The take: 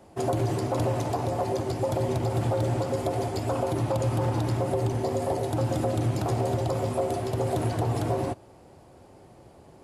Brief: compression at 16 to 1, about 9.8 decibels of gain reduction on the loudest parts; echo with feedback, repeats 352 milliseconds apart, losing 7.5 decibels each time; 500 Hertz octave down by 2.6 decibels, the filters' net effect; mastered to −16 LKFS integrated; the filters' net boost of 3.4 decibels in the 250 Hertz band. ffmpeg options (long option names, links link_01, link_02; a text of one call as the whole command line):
ffmpeg -i in.wav -af "equalizer=frequency=250:width_type=o:gain=6.5,equalizer=frequency=500:width_type=o:gain=-5.5,acompressor=threshold=-31dB:ratio=16,aecho=1:1:352|704|1056|1408|1760:0.422|0.177|0.0744|0.0312|0.0131,volume=19dB" out.wav